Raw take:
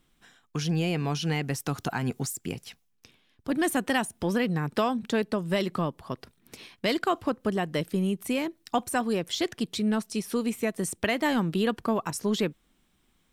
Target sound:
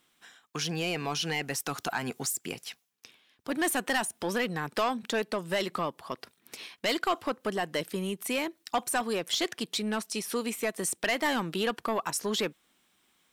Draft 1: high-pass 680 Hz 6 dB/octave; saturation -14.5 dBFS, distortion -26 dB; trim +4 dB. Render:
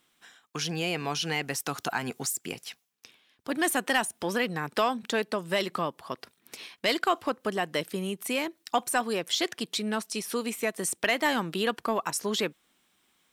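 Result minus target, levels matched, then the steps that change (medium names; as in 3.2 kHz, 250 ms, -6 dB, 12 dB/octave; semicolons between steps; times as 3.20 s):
saturation: distortion -12 dB
change: saturation -24 dBFS, distortion -13 dB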